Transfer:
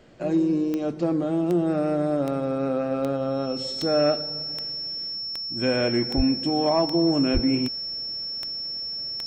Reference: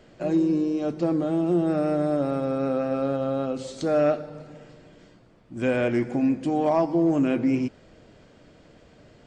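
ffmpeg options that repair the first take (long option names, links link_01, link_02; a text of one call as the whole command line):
ffmpeg -i in.wav -filter_complex "[0:a]adeclick=threshold=4,bandreject=frequency=5400:width=30,asplit=3[link_01][link_02][link_03];[link_01]afade=type=out:start_time=6.16:duration=0.02[link_04];[link_02]highpass=frequency=140:width=0.5412,highpass=frequency=140:width=1.3066,afade=type=in:start_time=6.16:duration=0.02,afade=type=out:start_time=6.28:duration=0.02[link_05];[link_03]afade=type=in:start_time=6.28:duration=0.02[link_06];[link_04][link_05][link_06]amix=inputs=3:normalize=0,asplit=3[link_07][link_08][link_09];[link_07]afade=type=out:start_time=7.33:duration=0.02[link_10];[link_08]highpass=frequency=140:width=0.5412,highpass=frequency=140:width=1.3066,afade=type=in:start_time=7.33:duration=0.02,afade=type=out:start_time=7.45:duration=0.02[link_11];[link_09]afade=type=in:start_time=7.45:duration=0.02[link_12];[link_10][link_11][link_12]amix=inputs=3:normalize=0" out.wav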